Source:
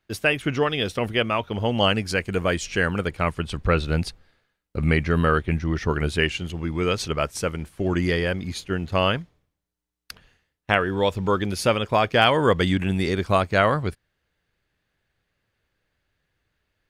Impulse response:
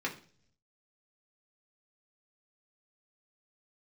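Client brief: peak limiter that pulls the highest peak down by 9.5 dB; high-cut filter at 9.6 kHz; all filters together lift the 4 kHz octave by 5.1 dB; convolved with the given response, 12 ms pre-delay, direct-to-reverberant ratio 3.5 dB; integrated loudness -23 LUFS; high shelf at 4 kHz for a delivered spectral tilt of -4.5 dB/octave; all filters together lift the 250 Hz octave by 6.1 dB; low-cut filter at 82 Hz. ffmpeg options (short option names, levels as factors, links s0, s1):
-filter_complex "[0:a]highpass=82,lowpass=9600,equalizer=f=250:t=o:g=8.5,highshelf=f=4000:g=7,equalizer=f=4000:t=o:g=3.5,alimiter=limit=0.376:level=0:latency=1,asplit=2[s0][s1];[1:a]atrim=start_sample=2205,adelay=12[s2];[s1][s2]afir=irnorm=-1:irlink=0,volume=0.355[s3];[s0][s3]amix=inputs=2:normalize=0,volume=0.75"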